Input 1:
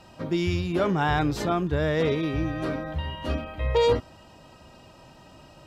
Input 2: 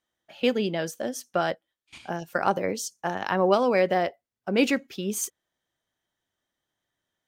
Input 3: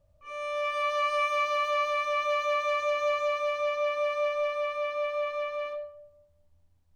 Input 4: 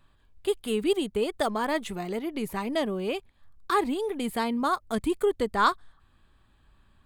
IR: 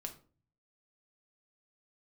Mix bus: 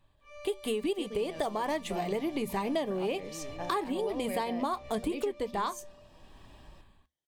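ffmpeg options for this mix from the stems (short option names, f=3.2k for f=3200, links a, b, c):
-filter_complex "[0:a]flanger=delay=3.8:depth=4.6:regen=64:speed=0.39:shape=triangular,acompressor=threshold=-34dB:ratio=6,aeval=exprs='0.0188*(abs(mod(val(0)/0.0188+3,4)-2)-1)':c=same,adelay=1150,volume=-1.5dB[a];[1:a]adelay=550,volume=-5.5dB[b];[2:a]asoftclip=type=tanh:threshold=-33.5dB,volume=-4dB[c];[3:a]equalizer=f=1k:w=0.56:g=5,bandreject=f=60:t=h:w=6,bandreject=f=120:t=h:w=6,bandreject=f=180:t=h:w=6,bandreject=f=240:t=h:w=6,dynaudnorm=f=140:g=7:m=16dB,volume=-2dB[d];[a][b][c][d]amix=inputs=4:normalize=0,equalizer=f=1.4k:w=3.2:g=-12.5,flanger=delay=6.4:depth=1:regen=-76:speed=1.8:shape=triangular,acompressor=threshold=-29dB:ratio=6"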